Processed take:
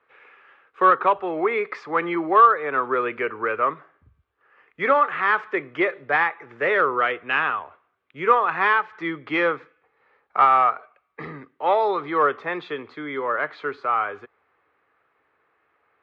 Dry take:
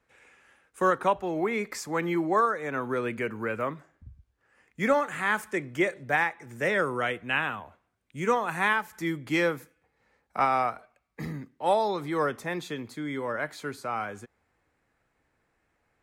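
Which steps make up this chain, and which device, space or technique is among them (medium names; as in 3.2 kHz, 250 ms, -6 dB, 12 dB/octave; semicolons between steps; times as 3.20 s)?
overdrive pedal into a guitar cabinet (overdrive pedal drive 9 dB, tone 3.9 kHz, clips at -12 dBFS; cabinet simulation 91–3500 Hz, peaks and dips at 120 Hz -4 dB, 210 Hz -9 dB, 420 Hz +7 dB, 1.2 kHz +9 dB); trim +1.5 dB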